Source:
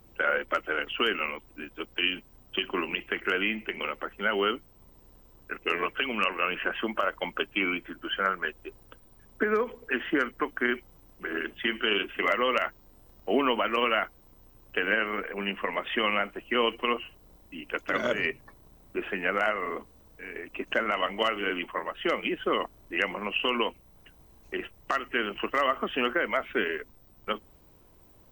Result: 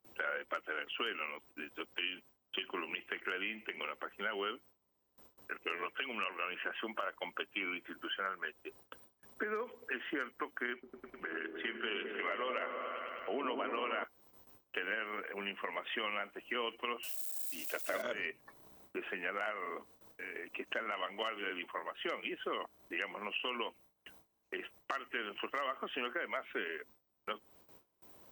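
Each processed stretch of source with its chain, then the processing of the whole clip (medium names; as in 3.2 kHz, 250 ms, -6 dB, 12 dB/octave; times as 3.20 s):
10.73–14.04 s: tone controls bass -3 dB, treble -14 dB + delay with an opening low-pass 102 ms, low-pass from 400 Hz, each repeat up 1 oct, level -3 dB
17.03–18.02 s: zero-crossing glitches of -28.5 dBFS + peaking EQ 630 Hz +14 dB 0.33 oct
whole clip: high-pass 380 Hz 6 dB/octave; gate with hold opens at -49 dBFS; compression 2:1, threshold -45 dBFS; trim +1 dB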